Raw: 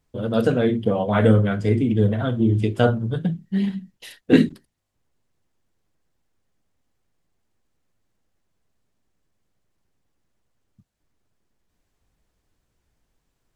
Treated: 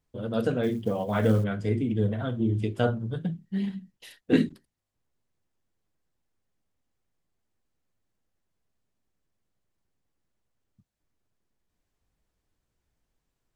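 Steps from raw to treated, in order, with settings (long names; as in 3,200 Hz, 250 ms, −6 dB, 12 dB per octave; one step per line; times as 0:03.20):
0:00.63–0:01.44: floating-point word with a short mantissa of 4 bits
level −7 dB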